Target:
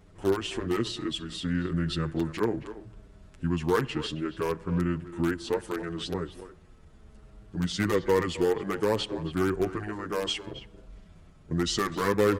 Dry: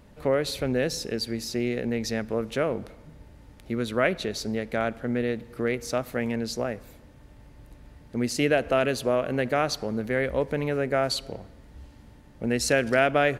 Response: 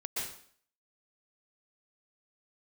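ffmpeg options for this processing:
-filter_complex "[0:a]atempo=1.5,asplit=2[link_01][link_02];[link_02]aeval=exprs='(mod(5.62*val(0)+1,2)-1)/5.62':channel_layout=same,volume=-10dB[link_03];[link_01][link_03]amix=inputs=2:normalize=0,asetrate=31752,aresample=44100,asplit=2[link_04][link_05];[link_05]adelay=270,highpass=300,lowpass=3400,asoftclip=type=hard:threshold=-14.5dB,volume=-13dB[link_06];[link_04][link_06]amix=inputs=2:normalize=0,asplit=2[link_07][link_08];[link_08]adelay=7.7,afreqshift=-0.64[link_09];[link_07][link_09]amix=inputs=2:normalize=1,volume=-1dB"

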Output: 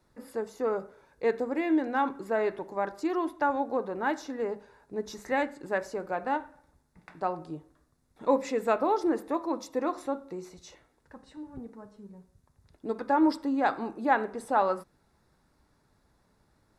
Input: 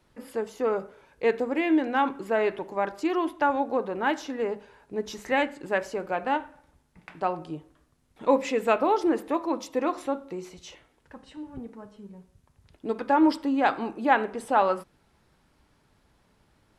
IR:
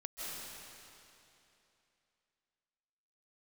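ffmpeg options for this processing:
-af "equalizer=frequency=2500:width_type=o:width=0.42:gain=-7,bandreject=frequency=3100:width=5.5,volume=-3dB"

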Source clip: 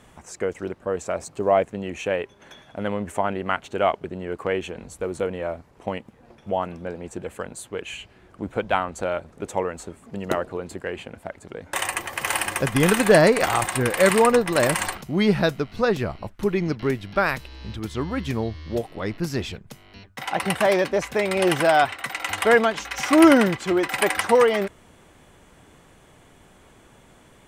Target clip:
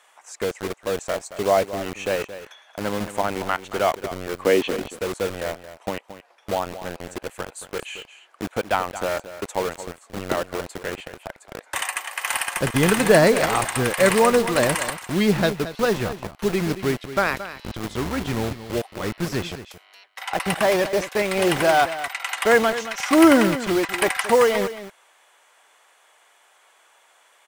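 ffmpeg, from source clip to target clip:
ffmpeg -i in.wav -filter_complex "[0:a]asplit=3[link_01][link_02][link_03];[link_01]afade=type=out:start_time=4.41:duration=0.02[link_04];[link_02]equalizer=frequency=125:width_type=o:width=1:gain=-11,equalizer=frequency=250:width_type=o:width=1:gain=12,equalizer=frequency=500:width_type=o:width=1:gain=5,equalizer=frequency=2000:width_type=o:width=1:gain=3,equalizer=frequency=4000:width_type=o:width=1:gain=11,equalizer=frequency=8000:width_type=o:width=1:gain=-12,afade=type=in:start_time=4.41:duration=0.02,afade=type=out:start_time=4.88:duration=0.02[link_05];[link_03]afade=type=in:start_time=4.88:duration=0.02[link_06];[link_04][link_05][link_06]amix=inputs=3:normalize=0,acrossover=split=620|1000[link_07][link_08][link_09];[link_07]acrusher=bits=4:mix=0:aa=0.000001[link_10];[link_10][link_08][link_09]amix=inputs=3:normalize=0,aecho=1:1:224:0.224" out.wav

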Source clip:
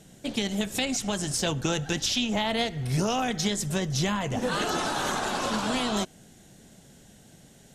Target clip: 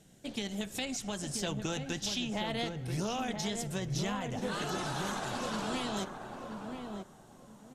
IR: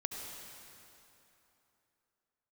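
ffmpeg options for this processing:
-filter_complex "[0:a]asplit=2[link_01][link_02];[link_02]adelay=983,lowpass=frequency=1000:poles=1,volume=-4dB,asplit=2[link_03][link_04];[link_04]adelay=983,lowpass=frequency=1000:poles=1,volume=0.25,asplit=2[link_05][link_06];[link_06]adelay=983,lowpass=frequency=1000:poles=1,volume=0.25[link_07];[link_01][link_03][link_05][link_07]amix=inputs=4:normalize=0,volume=-8.5dB"

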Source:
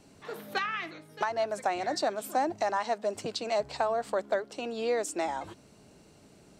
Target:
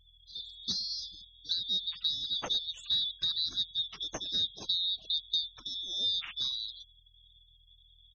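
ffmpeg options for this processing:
ffmpeg -i in.wav -filter_complex "[0:a]afftfilt=real='real(if(lt(b,736),b+184*(1-2*mod(floor(b/184),2)),b),0)':imag='imag(if(lt(b,736),b+184*(1-2*mod(floor(b/184),2)),b),0)':win_size=2048:overlap=0.75,asplit=2[link_01][link_02];[link_02]adelay=86,lowpass=frequency=1300:poles=1,volume=-19dB,asplit=2[link_03][link_04];[link_04]adelay=86,lowpass=frequency=1300:poles=1,volume=0.28[link_05];[link_01][link_03][link_05]amix=inputs=3:normalize=0,asplit=2[link_06][link_07];[link_07]acrusher=bits=5:mode=log:mix=0:aa=0.000001,volume=-10.5dB[link_08];[link_06][link_08]amix=inputs=2:normalize=0,aeval=exprs='val(0)+0.00141*(sin(2*PI*50*n/s)+sin(2*PI*2*50*n/s)/2+sin(2*PI*3*50*n/s)/3+sin(2*PI*4*50*n/s)/4+sin(2*PI*5*50*n/s)/5)':channel_layout=same,asetrate=35721,aresample=44100,afftfilt=real='re*gte(hypot(re,im),0.00891)':imag='im*gte(hypot(re,im),0.00891)':win_size=1024:overlap=0.75,aresample=16000,aresample=44100,volume=-5.5dB" out.wav

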